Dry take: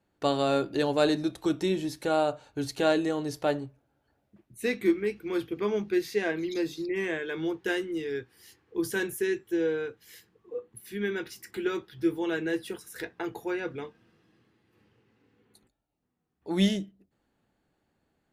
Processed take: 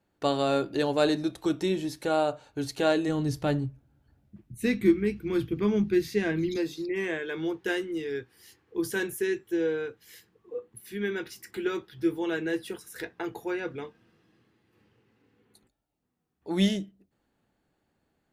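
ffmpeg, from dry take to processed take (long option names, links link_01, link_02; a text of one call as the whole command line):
ffmpeg -i in.wav -filter_complex "[0:a]asplit=3[link_01][link_02][link_03];[link_01]afade=type=out:start_time=3.07:duration=0.02[link_04];[link_02]asubboost=boost=6:cutoff=220,afade=type=in:start_time=3.07:duration=0.02,afade=type=out:start_time=6.56:duration=0.02[link_05];[link_03]afade=type=in:start_time=6.56:duration=0.02[link_06];[link_04][link_05][link_06]amix=inputs=3:normalize=0" out.wav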